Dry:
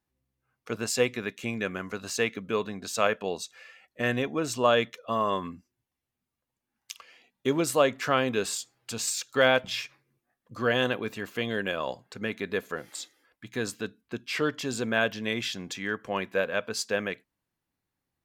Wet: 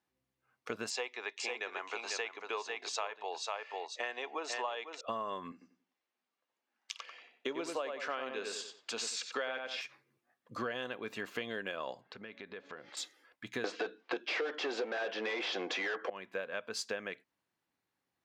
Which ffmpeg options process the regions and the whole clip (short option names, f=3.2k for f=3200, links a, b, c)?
-filter_complex "[0:a]asettb=1/sr,asplit=3[a][b][c];[a]atrim=end=0.904[d];[b]atrim=start=0.9:end=5.01,asetpts=PTS-STARTPTS,afade=t=in:d=0.004:c=qsin,afade=t=out:st=4.106:d=0.004:c=qsin,highpass=f=430:w=0.5412,highpass=f=430:w=1.3066,equalizer=f=540:t=q:w=4:g=-7,equalizer=f=860:t=q:w=4:g=10,equalizer=f=1.5k:t=q:w=4:g=-5,lowpass=f=6.9k:w=0.5412,lowpass=f=6.9k:w=1.3066,aecho=1:1:497:0.473,atrim=end_sample=181251[e];[c]atrim=start=5.006[f];[d][e]acrossfade=d=0.004:c1=hsin:c2=qsin[g];[g][f]acrossfade=d=0.004:c1=qsin:c2=hsin,asettb=1/sr,asplit=3[h][i][j];[h]atrim=end=5.524[k];[i]atrim=start=5.52:end=9.81,asetpts=PTS-STARTPTS,afade=t=in:d=0.004:c=qsin,afade=t=out:st=4.286:d=0.004:c=qsin,highpass=320,lowpass=6.5k,asplit=2[l][m];[m]adelay=92,lowpass=f=3.3k:p=1,volume=-5.5dB,asplit=2[n][o];[o]adelay=92,lowpass=f=3.3k:p=1,volume=0.29,asplit=2[p][q];[q]adelay=92,lowpass=f=3.3k:p=1,volume=0.29,asplit=2[r][s];[s]adelay=92,lowpass=f=3.3k:p=1,volume=0.29[t];[l][n][p][r][t]amix=inputs=5:normalize=0,atrim=end_sample=189189[u];[j]atrim=start=9.806[v];[k][u]acrossfade=d=0.004:c1=hsin:c2=qsin[w];[w][v]acrossfade=d=0.004:c1=qsin:c2=hsin,asettb=1/sr,asplit=3[x][y][z];[x]atrim=end=12.014[aa];[y]atrim=start=12.01:end=12.97,asetpts=PTS-STARTPTS,afade=t=in:d=0.004:c=qsin,afade=t=out:st=0.956:d=0.004:c=qsin,lowpass=f=5k:w=0.5412,lowpass=f=5k:w=1.3066,bandreject=f=281:t=h:w=4,bandreject=f=562:t=h:w=4,bandreject=f=843:t=h:w=4,bandreject=f=1.124k:t=h:w=4,acompressor=threshold=-46dB:ratio=4:attack=3.2:release=140:knee=1:detection=peak[ab];[z]atrim=start=12.966[ac];[aa][ab]acrossfade=d=0.004:c1=hsin:c2=qsin[ad];[ad][ac]acrossfade=d=0.004:c1=qsin:c2=hsin,asettb=1/sr,asplit=3[ae][af][ag];[ae]atrim=end=13.644[ah];[af]atrim=start=13.64:end=16.1,asetpts=PTS-STARTPTS,afade=t=in:d=0.004:c=qsin,afade=t=out:st=2.456:d=0.004:c=qsin,asplit=2[ai][aj];[aj]highpass=f=720:p=1,volume=33dB,asoftclip=type=tanh:threshold=-9dB[ak];[ai][ak]amix=inputs=2:normalize=0,lowpass=f=3k:p=1,volume=-6dB,highpass=f=210:w=0.5412,highpass=f=210:w=1.3066,equalizer=f=240:t=q:w=4:g=-5,equalizer=f=340:t=q:w=4:g=7,equalizer=f=500:t=q:w=4:g=9,equalizer=f=750:t=q:w=4:g=7,lowpass=f=6k:w=0.5412,lowpass=f=6k:w=1.3066[al];[ag]atrim=start=16.096[am];[ah][al]acrossfade=d=0.004:c1=hsin:c2=qsin[an];[an][am]acrossfade=d=0.004:c1=qsin:c2=hsin,highpass=f=380:p=1,highshelf=f=8.1k:g=-11.5,acompressor=threshold=-37dB:ratio=10,volume=2.5dB"